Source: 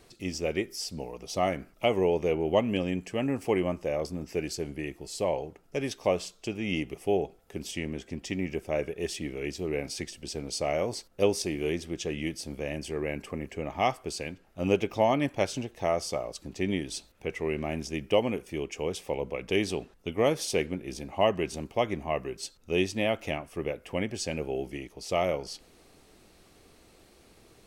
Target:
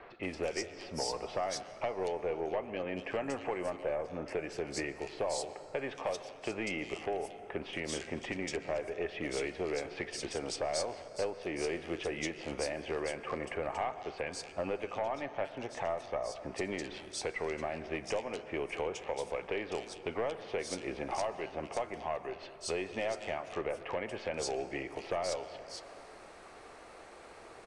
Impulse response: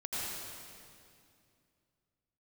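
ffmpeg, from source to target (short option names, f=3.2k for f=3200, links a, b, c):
-filter_complex "[0:a]acrossover=split=510 2200:gain=0.126 1 0.224[a][b][c];[a][b][c]amix=inputs=3:normalize=0,acompressor=threshold=-44dB:ratio=8,aeval=exprs='0.0376*(cos(1*acos(clip(val(0)/0.0376,-1,1)))-cos(1*PI/2))+0.00944*(cos(5*acos(clip(val(0)/0.0376,-1,1)))-cos(5*PI/2))+0.00168*(cos(8*acos(clip(val(0)/0.0376,-1,1)))-cos(8*PI/2))':c=same,acrossover=split=3200[d][e];[e]adelay=230[f];[d][f]amix=inputs=2:normalize=0,asplit=2[g][h];[1:a]atrim=start_sample=2205,highshelf=f=4.3k:g=-12,adelay=36[i];[h][i]afir=irnorm=-1:irlink=0,volume=-15dB[j];[g][j]amix=inputs=2:normalize=0,aresample=22050,aresample=44100,volume=6dB"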